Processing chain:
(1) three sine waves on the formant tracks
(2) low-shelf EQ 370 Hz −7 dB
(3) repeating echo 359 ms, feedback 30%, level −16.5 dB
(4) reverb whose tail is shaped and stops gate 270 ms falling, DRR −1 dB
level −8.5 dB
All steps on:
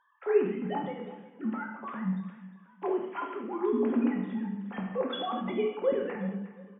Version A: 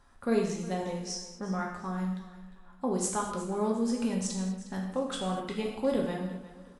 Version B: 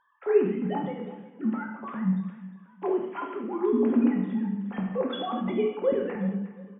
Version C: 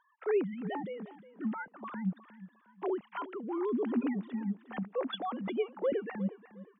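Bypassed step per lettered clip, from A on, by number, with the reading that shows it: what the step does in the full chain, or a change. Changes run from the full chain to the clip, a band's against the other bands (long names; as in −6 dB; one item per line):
1, 125 Hz band +4.0 dB
2, 2 kHz band −3.5 dB
4, change in crest factor −4.0 dB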